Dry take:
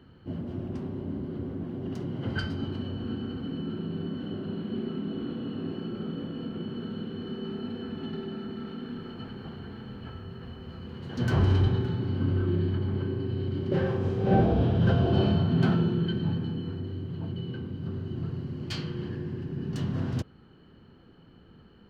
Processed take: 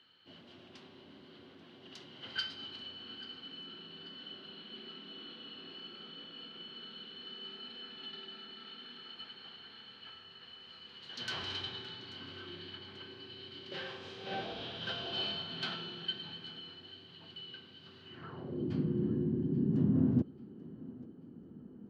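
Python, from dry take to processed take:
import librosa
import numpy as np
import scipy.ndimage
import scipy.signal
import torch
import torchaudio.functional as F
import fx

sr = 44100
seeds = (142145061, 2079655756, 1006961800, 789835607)

y = fx.filter_sweep_bandpass(x, sr, from_hz=3700.0, to_hz=250.0, start_s=18.01, end_s=18.7, q=2.0)
y = fx.echo_thinned(y, sr, ms=837, feedback_pct=42, hz=220.0, wet_db=-19.0)
y = F.gain(torch.from_numpy(y), 7.0).numpy()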